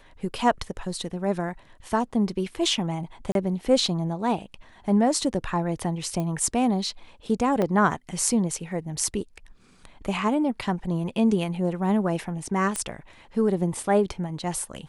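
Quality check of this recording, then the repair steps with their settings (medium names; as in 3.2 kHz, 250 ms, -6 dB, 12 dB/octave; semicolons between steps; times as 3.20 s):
3.32–3.35 s: dropout 32 ms
6.20 s: pop -18 dBFS
7.62 s: dropout 2.3 ms
12.76 s: pop -14 dBFS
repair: de-click; interpolate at 3.32 s, 32 ms; interpolate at 7.62 s, 2.3 ms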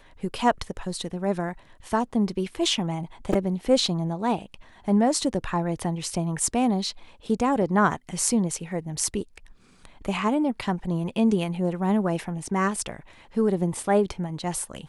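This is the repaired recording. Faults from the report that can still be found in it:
6.20 s: pop
12.76 s: pop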